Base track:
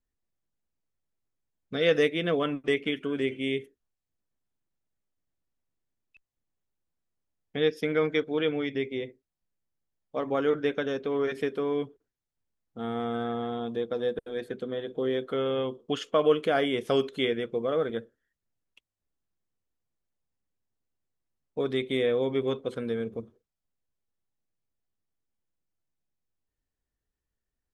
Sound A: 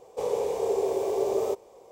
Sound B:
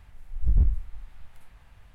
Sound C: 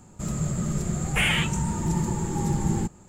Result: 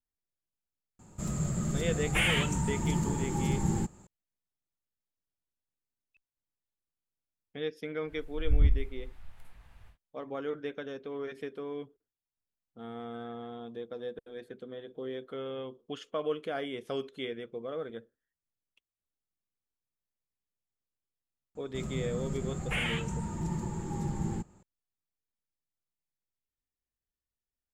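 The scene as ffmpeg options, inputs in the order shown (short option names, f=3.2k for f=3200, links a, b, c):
-filter_complex "[3:a]asplit=2[a][b];[0:a]volume=-10dB[c];[b]highshelf=f=6k:g=-8.5[d];[a]atrim=end=3.08,asetpts=PTS-STARTPTS,volume=-4.5dB,afade=t=in:d=0.004:c=hsin,afade=t=out:st=3.076:d=0.004:c=hsin,adelay=990[e];[2:a]atrim=end=1.94,asetpts=PTS-STARTPTS,volume=-2.5dB,afade=t=in:d=0.1,afade=t=out:st=1.84:d=0.1,adelay=8040[f];[d]atrim=end=3.08,asetpts=PTS-STARTPTS,volume=-8.5dB,afade=t=in:d=0.004:c=hsin,afade=t=out:st=3.076:d=0.004:c=hsin,adelay=21550[g];[c][e][f][g]amix=inputs=4:normalize=0"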